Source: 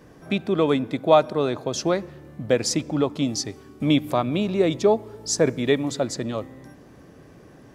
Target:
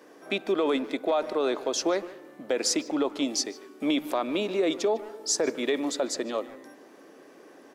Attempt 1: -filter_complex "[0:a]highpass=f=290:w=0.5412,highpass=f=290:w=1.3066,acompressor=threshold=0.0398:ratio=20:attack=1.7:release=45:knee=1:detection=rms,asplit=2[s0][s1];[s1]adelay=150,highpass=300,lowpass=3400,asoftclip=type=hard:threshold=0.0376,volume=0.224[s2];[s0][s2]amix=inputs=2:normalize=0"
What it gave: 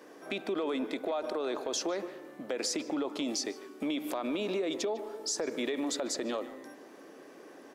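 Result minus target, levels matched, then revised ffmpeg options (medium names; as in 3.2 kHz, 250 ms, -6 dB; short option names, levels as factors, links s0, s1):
compression: peak gain reduction +8 dB
-filter_complex "[0:a]highpass=f=290:w=0.5412,highpass=f=290:w=1.3066,acompressor=threshold=0.106:ratio=20:attack=1.7:release=45:knee=1:detection=rms,asplit=2[s0][s1];[s1]adelay=150,highpass=300,lowpass=3400,asoftclip=type=hard:threshold=0.0376,volume=0.224[s2];[s0][s2]amix=inputs=2:normalize=0"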